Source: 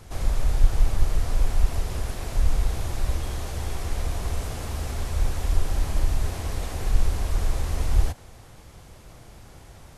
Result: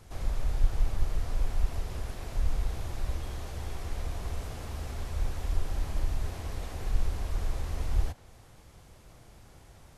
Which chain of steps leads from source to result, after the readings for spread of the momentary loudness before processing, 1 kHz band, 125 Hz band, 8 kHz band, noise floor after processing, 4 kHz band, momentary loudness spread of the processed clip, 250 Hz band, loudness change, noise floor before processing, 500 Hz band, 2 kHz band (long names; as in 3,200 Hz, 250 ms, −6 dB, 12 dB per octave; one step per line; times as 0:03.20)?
22 LU, −7.0 dB, −7.0 dB, −10.0 dB, −55 dBFS, −8.0 dB, 22 LU, −7.0 dB, −7.0 dB, −48 dBFS, −7.0 dB, −7.0 dB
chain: dynamic equaliser 9,300 Hz, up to −4 dB, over −55 dBFS, Q 0.76
level −7 dB